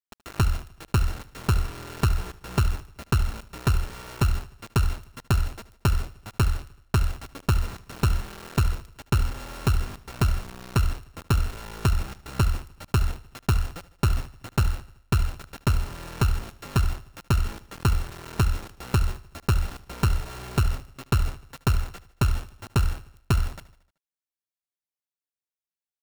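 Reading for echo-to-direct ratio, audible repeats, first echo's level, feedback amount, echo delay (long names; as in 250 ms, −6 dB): −16.5 dB, 4, −18.0 dB, 55%, 76 ms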